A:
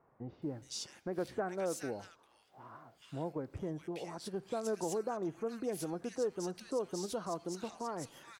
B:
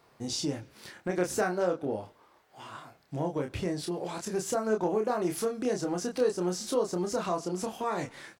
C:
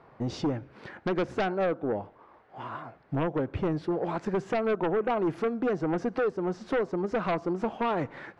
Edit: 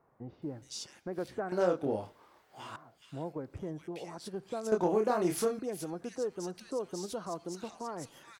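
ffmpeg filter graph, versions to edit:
-filter_complex "[1:a]asplit=2[s0][s1];[0:a]asplit=3[s2][s3][s4];[s2]atrim=end=1.522[s5];[s0]atrim=start=1.518:end=2.762[s6];[s3]atrim=start=2.758:end=4.722[s7];[s1]atrim=start=4.718:end=5.592[s8];[s4]atrim=start=5.588[s9];[s5][s6]acrossfade=d=0.004:c1=hsin:c2=hsin[s10];[s10][s7]acrossfade=d=0.004:c1=hsin:c2=hsin[s11];[s11][s8]acrossfade=d=0.004:c1=hsin:c2=hsin[s12];[s12][s9]acrossfade=d=0.004:c1=hsin:c2=hsin"

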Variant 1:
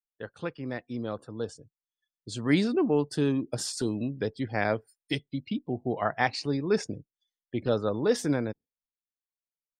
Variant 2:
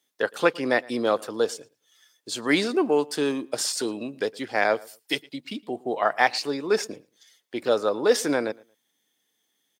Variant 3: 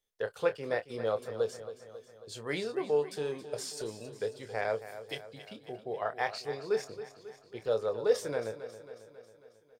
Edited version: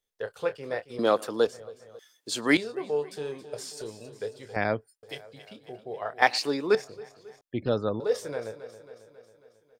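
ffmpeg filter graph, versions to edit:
-filter_complex "[1:a]asplit=3[s0][s1][s2];[0:a]asplit=2[s3][s4];[2:a]asplit=6[s5][s6][s7][s8][s9][s10];[s5]atrim=end=0.992[s11];[s0]atrim=start=0.988:end=1.472[s12];[s6]atrim=start=1.468:end=1.992[s13];[s1]atrim=start=1.988:end=2.572[s14];[s7]atrim=start=2.568:end=4.562[s15];[s3]atrim=start=4.558:end=5.032[s16];[s8]atrim=start=5.028:end=6.222[s17];[s2]atrim=start=6.218:end=6.752[s18];[s9]atrim=start=6.748:end=7.412[s19];[s4]atrim=start=7.408:end=8.002[s20];[s10]atrim=start=7.998[s21];[s11][s12]acrossfade=d=0.004:c1=hsin:c2=hsin[s22];[s22][s13]acrossfade=d=0.004:c1=hsin:c2=hsin[s23];[s23][s14]acrossfade=d=0.004:c1=hsin:c2=hsin[s24];[s24][s15]acrossfade=d=0.004:c1=hsin:c2=hsin[s25];[s25][s16]acrossfade=d=0.004:c1=hsin:c2=hsin[s26];[s26][s17]acrossfade=d=0.004:c1=hsin:c2=hsin[s27];[s27][s18]acrossfade=d=0.004:c1=hsin:c2=hsin[s28];[s28][s19]acrossfade=d=0.004:c1=hsin:c2=hsin[s29];[s29][s20]acrossfade=d=0.004:c1=hsin:c2=hsin[s30];[s30][s21]acrossfade=d=0.004:c1=hsin:c2=hsin"

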